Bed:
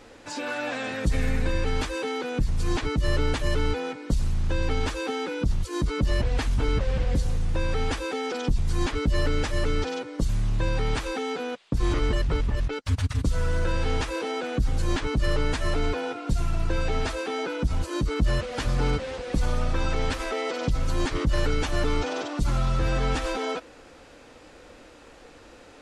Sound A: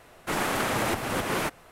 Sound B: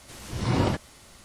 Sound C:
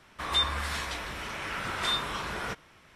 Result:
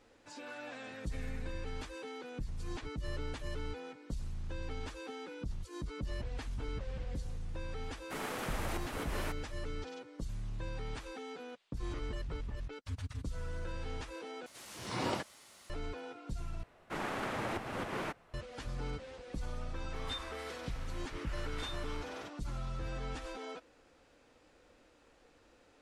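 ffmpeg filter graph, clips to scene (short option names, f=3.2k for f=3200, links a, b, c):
-filter_complex "[1:a]asplit=2[a][b];[0:a]volume=-15.5dB[c];[2:a]highpass=f=510:p=1[d];[b]aemphasis=mode=reproduction:type=50fm[e];[3:a]highpass=51[f];[c]asplit=3[g][h][i];[g]atrim=end=14.464[j];[d]atrim=end=1.24,asetpts=PTS-STARTPTS,volume=-5.5dB[k];[h]atrim=start=15.696:end=16.634[l];[e]atrim=end=1.71,asetpts=PTS-STARTPTS,volume=-10dB[m];[i]atrim=start=18.336[n];[a]atrim=end=1.71,asetpts=PTS-STARTPTS,volume=-13dB,afade=t=in:d=0.004:c=hsin,afade=t=out:st=1.706:d=0.004:c=hsin,adelay=7830[o];[f]atrim=end=2.95,asetpts=PTS-STARTPTS,volume=-16dB,afade=t=in:d=0.004:c=hsin,afade=t=out:st=2.946:d=0.004:c=hsin,adelay=19750[p];[j][k]acrossfade=d=0.004:c1=hsin:c2=hsin[q];[q][l]acrossfade=d=0.004:c1=hsin:c2=hsin[r];[r][m]acrossfade=d=0.004:c1=hsin:c2=hsin[s];[s][n]acrossfade=d=0.004:c1=hsin:c2=hsin[t];[t][o][p]amix=inputs=3:normalize=0"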